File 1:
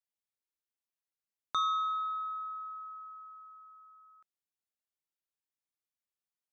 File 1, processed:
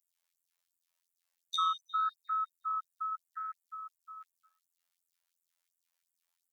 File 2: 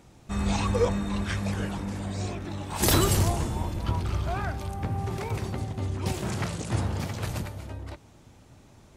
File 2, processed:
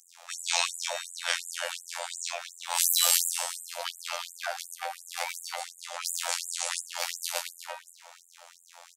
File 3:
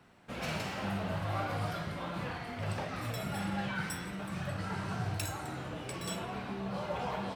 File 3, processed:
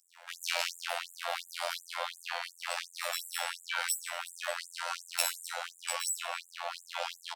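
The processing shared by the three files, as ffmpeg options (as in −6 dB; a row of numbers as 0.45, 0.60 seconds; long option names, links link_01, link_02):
-filter_complex "[0:a]afftfilt=real='hypot(re,im)*cos(PI*b)':imag='0':win_size=2048:overlap=0.75,acrossover=split=530|2200[link_01][link_02][link_03];[link_02]acompressor=threshold=-48dB:ratio=6[link_04];[link_01][link_04][link_03]amix=inputs=3:normalize=0,flanger=delay=7.5:depth=9.6:regen=-85:speed=0.82:shape=sinusoidal,asplit=2[link_05][link_06];[link_06]adelay=246,lowpass=frequency=3100:poles=1,volume=-18dB,asplit=2[link_07][link_08];[link_08]adelay=246,lowpass=frequency=3100:poles=1,volume=0.24[link_09];[link_07][link_09]amix=inputs=2:normalize=0[link_10];[link_05][link_10]amix=inputs=2:normalize=0,alimiter=level_in=20.5dB:limit=-1dB:release=50:level=0:latency=1,afftfilt=real='re*gte(b*sr/1024,490*pow(7100/490,0.5+0.5*sin(2*PI*2.8*pts/sr)))':imag='im*gte(b*sr/1024,490*pow(7100/490,0.5+0.5*sin(2*PI*2.8*pts/sr)))':win_size=1024:overlap=0.75,volume=-2dB"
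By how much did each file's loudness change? −0.5, −1.0, +1.5 LU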